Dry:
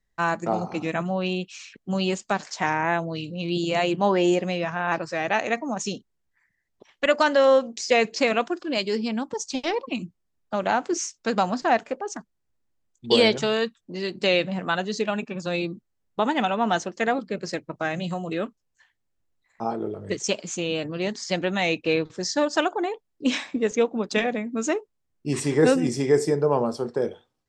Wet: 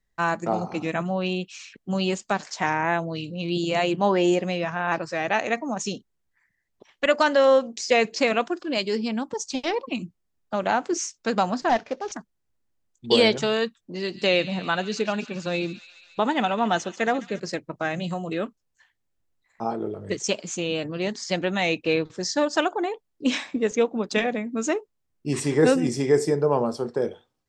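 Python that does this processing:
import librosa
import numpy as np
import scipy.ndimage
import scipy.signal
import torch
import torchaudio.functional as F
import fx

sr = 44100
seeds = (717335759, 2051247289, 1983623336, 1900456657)

y = fx.cvsd(x, sr, bps=32000, at=(11.69, 12.12))
y = fx.echo_wet_highpass(y, sr, ms=139, feedback_pct=73, hz=2500.0, wet_db=-12, at=(13.79, 17.4))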